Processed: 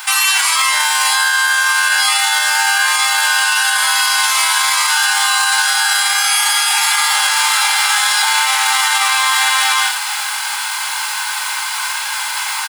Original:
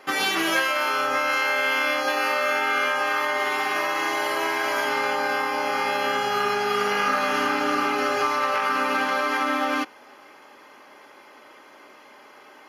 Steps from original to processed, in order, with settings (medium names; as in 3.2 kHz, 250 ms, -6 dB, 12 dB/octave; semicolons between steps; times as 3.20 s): formants flattened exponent 0.3; high-pass 1.2 kHz 24 dB/octave; reverse; compression 6:1, threshold -34 dBFS, peak gain reduction 14.5 dB; reverse; formant shift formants -5 st; on a send: reverse bouncing-ball echo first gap 20 ms, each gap 1.15×, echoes 5; on the sum: loudness maximiser +31 dB; trim -4 dB